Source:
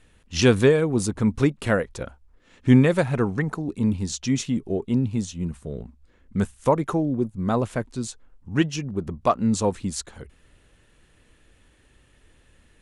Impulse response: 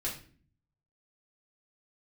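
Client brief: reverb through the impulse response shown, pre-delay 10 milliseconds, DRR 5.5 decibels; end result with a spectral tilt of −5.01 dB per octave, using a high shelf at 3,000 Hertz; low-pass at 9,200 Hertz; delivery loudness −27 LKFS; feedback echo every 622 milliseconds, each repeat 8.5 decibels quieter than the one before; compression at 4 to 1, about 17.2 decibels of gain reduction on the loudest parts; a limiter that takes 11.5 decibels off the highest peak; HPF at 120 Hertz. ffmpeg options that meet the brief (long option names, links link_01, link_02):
-filter_complex "[0:a]highpass=120,lowpass=9200,highshelf=frequency=3000:gain=4,acompressor=threshold=-33dB:ratio=4,alimiter=level_in=5.5dB:limit=-24dB:level=0:latency=1,volume=-5.5dB,aecho=1:1:622|1244|1866|2488:0.376|0.143|0.0543|0.0206,asplit=2[link_01][link_02];[1:a]atrim=start_sample=2205,adelay=10[link_03];[link_02][link_03]afir=irnorm=-1:irlink=0,volume=-8.5dB[link_04];[link_01][link_04]amix=inputs=2:normalize=0,volume=11.5dB"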